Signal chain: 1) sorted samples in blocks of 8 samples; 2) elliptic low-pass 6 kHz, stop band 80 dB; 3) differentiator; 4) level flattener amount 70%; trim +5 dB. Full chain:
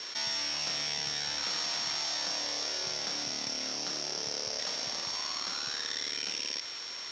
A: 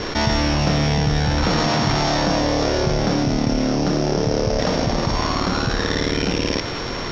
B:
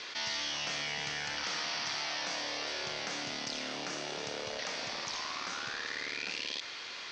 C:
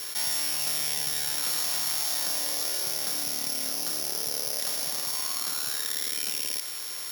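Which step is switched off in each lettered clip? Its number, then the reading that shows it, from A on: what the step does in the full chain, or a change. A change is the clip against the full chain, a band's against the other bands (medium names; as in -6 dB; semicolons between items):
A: 3, 8 kHz band -18.5 dB; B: 1, distortion -9 dB; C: 2, 8 kHz band +7.5 dB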